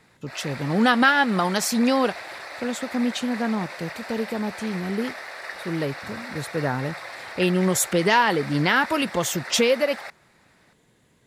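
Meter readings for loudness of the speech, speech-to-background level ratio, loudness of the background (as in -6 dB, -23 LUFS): -23.5 LUFS, 12.5 dB, -36.0 LUFS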